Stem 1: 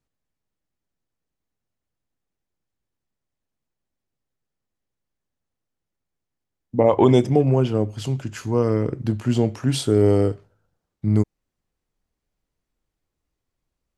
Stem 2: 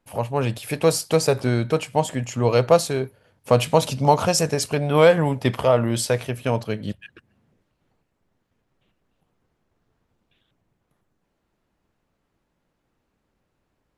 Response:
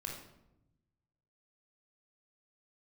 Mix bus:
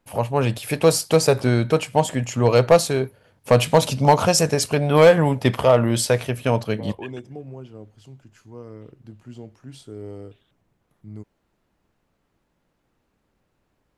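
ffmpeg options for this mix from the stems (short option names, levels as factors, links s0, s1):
-filter_complex "[0:a]volume=0.106[s0];[1:a]volume=2.51,asoftclip=hard,volume=0.398,volume=1.33[s1];[s0][s1]amix=inputs=2:normalize=0"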